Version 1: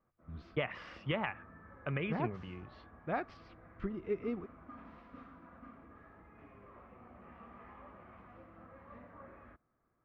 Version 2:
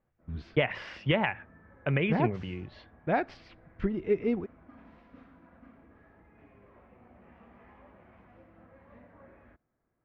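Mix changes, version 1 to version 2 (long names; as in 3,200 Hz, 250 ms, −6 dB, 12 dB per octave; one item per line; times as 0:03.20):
speech +9.0 dB
master: add parametric band 1,200 Hz −10.5 dB 0.29 octaves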